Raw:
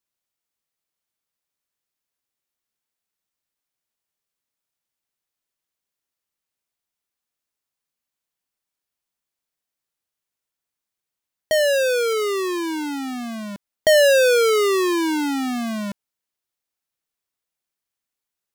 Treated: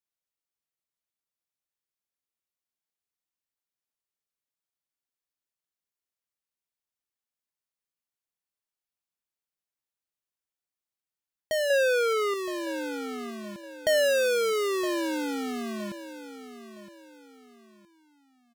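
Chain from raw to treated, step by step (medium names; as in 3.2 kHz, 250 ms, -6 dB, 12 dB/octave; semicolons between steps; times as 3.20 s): 11.70–12.34 s: peaking EQ 1.1 kHz +8.5 dB 2.6 oct; feedback delay 966 ms, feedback 33%, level -13 dB; trim -9 dB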